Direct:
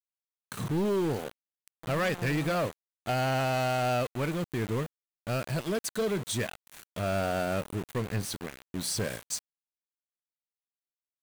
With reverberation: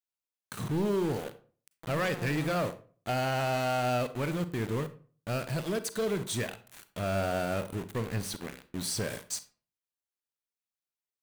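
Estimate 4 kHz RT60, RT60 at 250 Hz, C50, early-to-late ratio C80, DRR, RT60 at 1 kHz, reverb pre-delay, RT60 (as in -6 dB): 0.25 s, 0.45 s, 14.5 dB, 19.0 dB, 12.0 dB, 0.40 s, 35 ms, 0.40 s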